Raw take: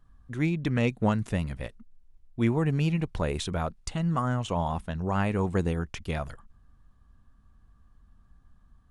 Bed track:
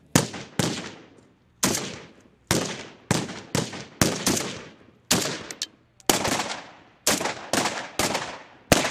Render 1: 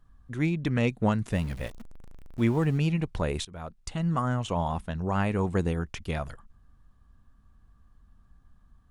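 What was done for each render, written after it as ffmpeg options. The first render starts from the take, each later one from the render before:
-filter_complex "[0:a]asettb=1/sr,asplit=3[a][b][c];[a]atrim=end=1.324[d];[b]atrim=start=1.32:end=2.78,asetpts=PTS-STARTPTS,afade=t=in:d=0.004:c=qsin,afade=t=out:st=1.456:d=0.004:c=qsin,aeval=exprs='val(0)+0.5*0.00944*sgn(val(0))':c=same[e];[c]atrim=start=2.776[f];[d][e]acrossfade=d=0.004:c1=hsin:c2=qsin[g];[g][f]acrossfade=d=0.004:c1=qsin:c2=hsin,asplit=2[h][i];[h]atrim=end=3.45,asetpts=PTS-STARTPTS,afade=t=out:st=3.446:d=0.004:c=hsin:silence=0.0891251[j];[i]atrim=start=3.45,asetpts=PTS-STARTPTS,afade=t=in:d=0.6:silence=0.0891251[k];[j][k]concat=n=2:v=0:a=1"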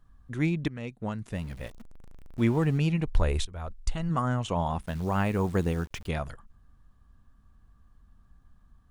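-filter_complex "[0:a]asplit=3[a][b][c];[a]afade=t=out:st=3.06:d=0.02[d];[b]asubboost=boost=9:cutoff=59,afade=t=in:st=3.06:d=0.02,afade=t=out:st=4.09:d=0.02[e];[c]afade=t=in:st=4.09:d=0.02[f];[d][e][f]amix=inputs=3:normalize=0,asettb=1/sr,asplit=3[g][h][i];[g]atrim=end=4.814[j];[h]atrim=start=4.81:end=6.08,asetpts=PTS-STARTPTS,afade=t=in:d=0.004:c=qsin,afade=t=out:st=1.266:d=0.004:c=qsin,acrusher=bits=9:dc=4:mix=0:aa=0.000001[k];[i]atrim=start=6.076[l];[j][k]acrossfade=d=0.004:c1=hsin:c2=qsin[m];[m][l]acrossfade=d=0.004:c1=qsin:c2=hsin,asplit=2[n][o];[n]atrim=end=0.68,asetpts=PTS-STARTPTS,afade=t=out:st=0.676:d=0.004:c=hsin:silence=0.177828[p];[o]atrim=start=0.68,asetpts=PTS-STARTPTS,afade=t=in:d=1.75:silence=0.177828[q];[p][q]concat=n=2:v=0:a=1"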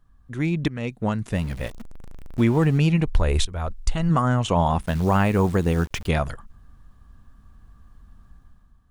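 -af "alimiter=limit=-18.5dB:level=0:latency=1:release=226,dynaudnorm=f=110:g=9:m=9dB"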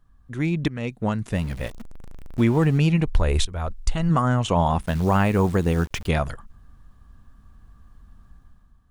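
-af anull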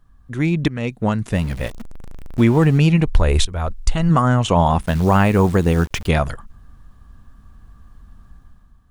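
-af "volume=5dB"

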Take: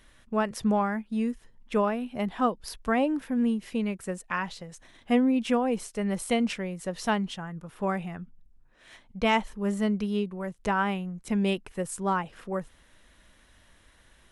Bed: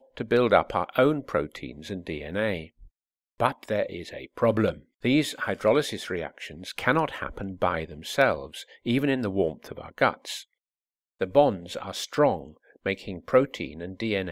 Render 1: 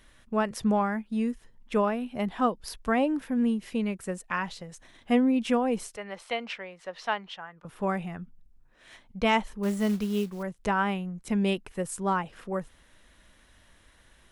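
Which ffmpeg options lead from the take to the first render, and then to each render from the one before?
-filter_complex "[0:a]asettb=1/sr,asplit=3[a][b][c];[a]atrim=end=5.964[d];[b]atrim=start=5.96:end=7.65,asetpts=PTS-STARTPTS,afade=t=in:d=0.004:c=qsin,afade=t=out:st=1.686:d=0.004:c=qsin,acrossover=split=510 4800:gain=0.112 1 0.0794[e][f][g];[e][f][g]amix=inputs=3:normalize=0[h];[c]atrim=start=7.646[i];[d][h]acrossfade=d=0.004:c1=hsin:c2=qsin[j];[j][i]acrossfade=d=0.004:c1=qsin:c2=hsin,asettb=1/sr,asplit=3[k][l][m];[k]atrim=end=9.634[n];[l]atrim=start=9.63:end=10.43,asetpts=PTS-STARTPTS,afade=t=in:d=0.004:c=qsin,afade=t=out:st=0.796:d=0.004:c=qsin,acrusher=bits=5:mode=log:mix=0:aa=0.000001[o];[m]atrim=start=10.426[p];[n][o]acrossfade=d=0.004:c1=hsin:c2=qsin[q];[q][p]acrossfade=d=0.004:c1=qsin:c2=hsin"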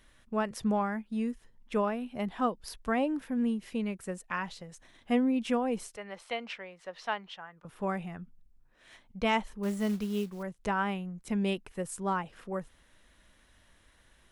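-af "volume=-4dB"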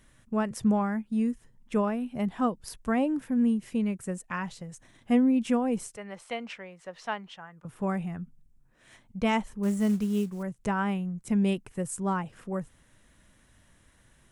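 -af "equalizer=f=125:t=o:w=1:g=10,equalizer=f=250:t=o:w=1:g=3,equalizer=f=4k:t=o:w=1:g=-4,equalizer=f=8k:t=o:w=1:g=6"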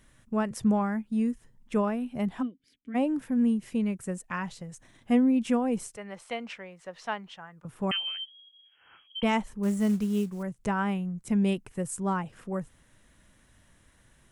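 -filter_complex "[0:a]asplit=3[a][b][c];[a]afade=t=out:st=2.41:d=0.02[d];[b]asplit=3[e][f][g];[e]bandpass=f=270:t=q:w=8,volume=0dB[h];[f]bandpass=f=2.29k:t=q:w=8,volume=-6dB[i];[g]bandpass=f=3.01k:t=q:w=8,volume=-9dB[j];[h][i][j]amix=inputs=3:normalize=0,afade=t=in:st=2.41:d=0.02,afade=t=out:st=2.94:d=0.02[k];[c]afade=t=in:st=2.94:d=0.02[l];[d][k][l]amix=inputs=3:normalize=0,asettb=1/sr,asplit=3[m][n][o];[m]atrim=end=7.914[p];[n]atrim=start=7.91:end=9.23,asetpts=PTS-STARTPTS,afade=t=in:d=0.004:c=qsin,afade=t=out:st=1.316:d=0.004:c=qsin,lowpass=f=2.8k:t=q:w=0.5098,lowpass=f=2.8k:t=q:w=0.6013,lowpass=f=2.8k:t=q:w=0.9,lowpass=f=2.8k:t=q:w=2.563,afreqshift=-3300[q];[o]atrim=start=9.226[r];[p][q]acrossfade=d=0.004:c1=hsin:c2=qsin[s];[s][r]acrossfade=d=0.004:c1=qsin:c2=hsin"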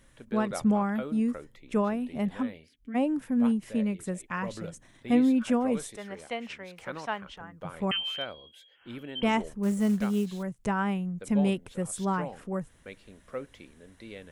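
-filter_complex "[1:a]volume=-17dB[a];[0:a][a]amix=inputs=2:normalize=0"

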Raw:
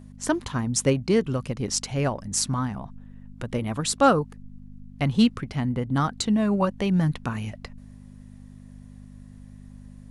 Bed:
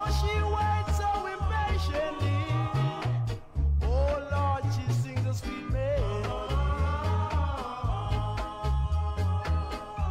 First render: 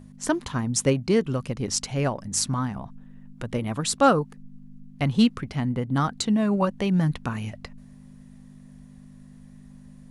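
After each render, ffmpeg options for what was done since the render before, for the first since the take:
-af "bandreject=f=50:t=h:w=4,bandreject=f=100:t=h:w=4"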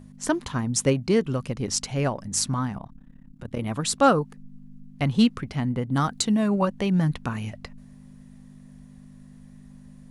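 -filter_complex "[0:a]asettb=1/sr,asplit=3[a][b][c];[a]atrim=end=2.784[d];[b]atrim=start=2.78:end=3.59,asetpts=PTS-STARTPTS,afade=t=in:d=0.004:c=qsin,afade=t=out:st=0.806:d=0.004:c=qsin,tremolo=f=34:d=0.889[e];[c]atrim=start=3.586[f];[d][e]acrossfade=d=0.004:c1=hsin:c2=qsin[g];[g][f]acrossfade=d=0.004:c1=qsin:c2=hsin,asettb=1/sr,asplit=3[h][i][j];[h]atrim=end=5.924[k];[i]atrim=start=5.92:end=6.48,asetpts=PTS-STARTPTS,afade=t=in:d=0.004:c=qsin,afade=t=out:st=0.556:d=0.004:c=qsin,highshelf=f=6.4k:g=7.5[l];[j]atrim=start=6.476[m];[k][l]acrossfade=d=0.004:c1=hsin:c2=qsin[n];[n][m]acrossfade=d=0.004:c1=qsin:c2=hsin"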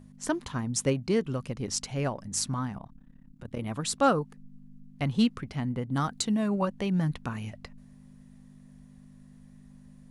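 -af "volume=-5dB"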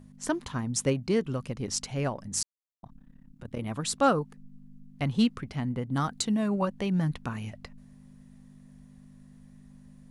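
-filter_complex "[0:a]asplit=3[a][b][c];[a]atrim=end=2.43,asetpts=PTS-STARTPTS,afade=t=out:st=2.426:d=0.004:c=hsin[d];[b]atrim=start=2.43:end=2.83,asetpts=PTS-STARTPTS,volume=0[e];[c]atrim=start=2.83,asetpts=PTS-STARTPTS,afade=t=in:d=0.004:c=hsin[f];[d][e][f]concat=n=3:v=0:a=1"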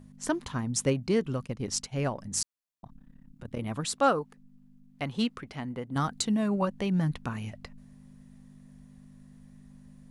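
-filter_complex "[0:a]asplit=3[a][b][c];[a]afade=t=out:st=1.45:d=0.02[d];[b]agate=range=-33dB:threshold=-36dB:ratio=3:release=100:detection=peak,afade=t=in:st=1.45:d=0.02,afade=t=out:st=2.02:d=0.02[e];[c]afade=t=in:st=2.02:d=0.02[f];[d][e][f]amix=inputs=3:normalize=0,asettb=1/sr,asplit=3[g][h][i];[g]atrim=end=3.854[j];[h]atrim=start=3.85:end=5.96,asetpts=PTS-STARTPTS,afade=t=in:d=0.004:c=qsin,afade=t=out:st=2.106:d=0.004:c=qsin,bass=f=250:g=-9,treble=f=4k:g=-2[k];[i]atrim=start=5.956[l];[j][k]acrossfade=d=0.004:c1=hsin:c2=qsin[m];[m][l]acrossfade=d=0.004:c1=qsin:c2=hsin"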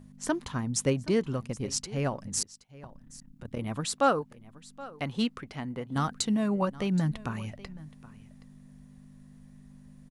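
-af "aecho=1:1:773:0.112"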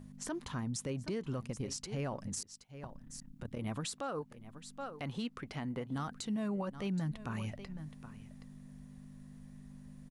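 -af "acompressor=threshold=-38dB:ratio=1.5,alimiter=level_in=5.5dB:limit=-24dB:level=0:latency=1:release=61,volume=-5.5dB"

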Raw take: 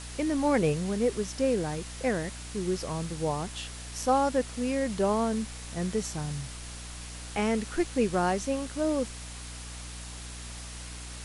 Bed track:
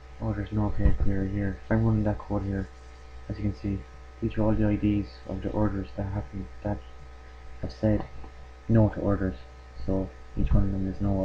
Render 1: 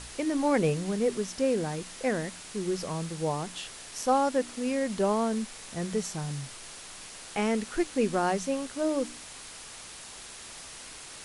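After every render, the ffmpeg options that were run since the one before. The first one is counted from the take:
-af "bandreject=f=60:t=h:w=4,bandreject=f=120:t=h:w=4,bandreject=f=180:t=h:w=4,bandreject=f=240:t=h:w=4,bandreject=f=300:t=h:w=4"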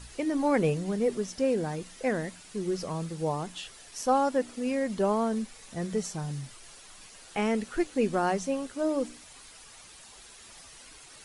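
-af "afftdn=nr=9:nf=-45"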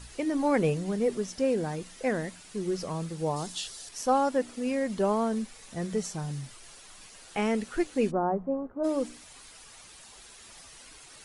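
-filter_complex "[0:a]asettb=1/sr,asplit=3[a][b][c];[a]atrim=end=3.364[d];[b]atrim=start=3.36:end=3.89,asetpts=PTS-STARTPTS,afade=t=in:d=0.004:c=qsin,afade=t=out:st=0.526:d=0.004:c=qsin,highshelf=f=3.3k:t=q:w=1.5:g=7[e];[c]atrim=start=3.886[f];[d][e]acrossfade=d=0.004:c1=hsin:c2=qsin[g];[g][f]acrossfade=d=0.004:c1=qsin:c2=hsin,asplit=3[h][i][j];[h]afade=t=out:st=8.1:d=0.02[k];[i]lowpass=f=1.1k:w=0.5412,lowpass=f=1.1k:w=1.3066,afade=t=in:st=8.1:d=0.02,afade=t=out:st=8.83:d=0.02[l];[j]afade=t=in:st=8.83:d=0.02[m];[k][l][m]amix=inputs=3:normalize=0"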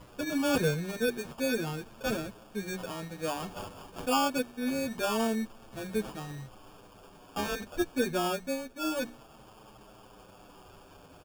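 -filter_complex "[0:a]acrusher=samples=22:mix=1:aa=0.000001,asplit=2[a][b];[b]adelay=7.8,afreqshift=-0.28[c];[a][c]amix=inputs=2:normalize=1"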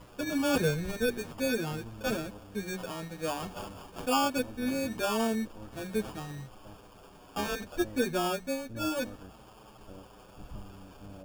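-filter_complex "[1:a]volume=-22dB[a];[0:a][a]amix=inputs=2:normalize=0"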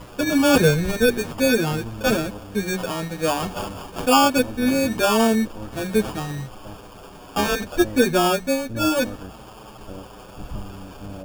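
-af "volume=11.5dB"

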